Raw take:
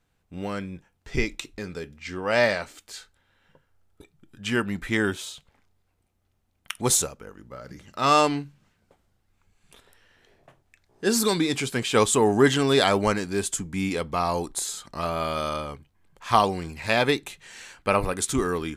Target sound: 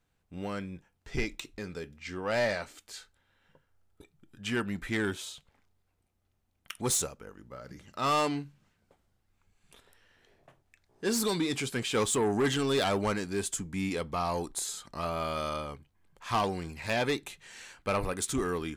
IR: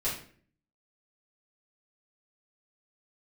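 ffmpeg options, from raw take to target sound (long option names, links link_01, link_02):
-af "asoftclip=type=tanh:threshold=-17dB,volume=-4.5dB"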